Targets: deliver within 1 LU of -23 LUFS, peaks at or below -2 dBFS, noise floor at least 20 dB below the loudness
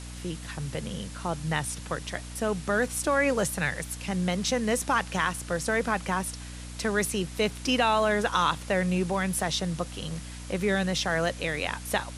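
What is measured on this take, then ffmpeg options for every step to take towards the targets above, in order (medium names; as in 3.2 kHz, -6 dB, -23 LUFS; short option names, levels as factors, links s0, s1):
hum 60 Hz; highest harmonic 300 Hz; hum level -38 dBFS; noise floor -40 dBFS; noise floor target -48 dBFS; loudness -28.0 LUFS; peak level -10.0 dBFS; loudness target -23.0 LUFS
-> -af "bandreject=f=60:t=h:w=6,bandreject=f=120:t=h:w=6,bandreject=f=180:t=h:w=6,bandreject=f=240:t=h:w=6,bandreject=f=300:t=h:w=6"
-af "afftdn=nr=8:nf=-40"
-af "volume=1.78"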